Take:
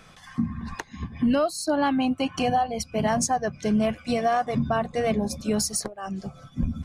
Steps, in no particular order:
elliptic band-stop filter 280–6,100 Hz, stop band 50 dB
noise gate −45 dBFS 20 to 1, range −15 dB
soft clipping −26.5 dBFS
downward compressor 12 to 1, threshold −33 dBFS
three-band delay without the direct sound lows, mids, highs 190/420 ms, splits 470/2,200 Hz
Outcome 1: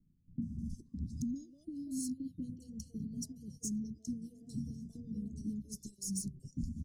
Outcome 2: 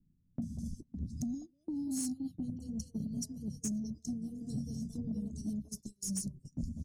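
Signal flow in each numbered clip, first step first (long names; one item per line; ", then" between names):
downward compressor, then noise gate, then three-band delay without the direct sound, then soft clipping, then elliptic band-stop filter
elliptic band-stop filter, then downward compressor, then three-band delay without the direct sound, then noise gate, then soft clipping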